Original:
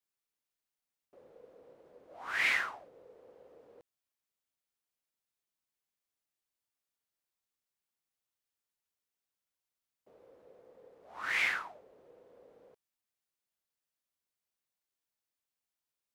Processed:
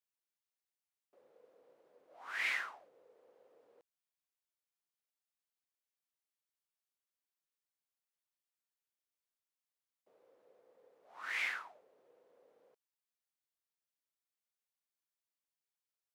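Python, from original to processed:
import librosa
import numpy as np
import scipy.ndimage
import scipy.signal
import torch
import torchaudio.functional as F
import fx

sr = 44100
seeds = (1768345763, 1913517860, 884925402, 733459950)

y = fx.highpass(x, sr, hz=480.0, slope=6)
y = F.gain(torch.from_numpy(y), -6.0).numpy()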